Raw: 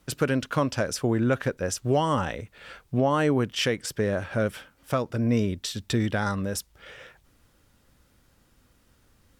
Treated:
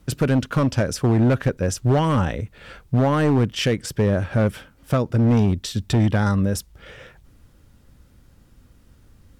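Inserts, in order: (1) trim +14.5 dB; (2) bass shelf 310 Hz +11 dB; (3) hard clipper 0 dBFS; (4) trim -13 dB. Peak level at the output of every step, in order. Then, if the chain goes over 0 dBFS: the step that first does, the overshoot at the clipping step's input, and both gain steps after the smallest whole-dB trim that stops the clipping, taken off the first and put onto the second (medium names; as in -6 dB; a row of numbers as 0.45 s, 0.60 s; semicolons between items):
+2.0 dBFS, +9.5 dBFS, 0.0 dBFS, -13.0 dBFS; step 1, 9.5 dB; step 1 +4.5 dB, step 4 -3 dB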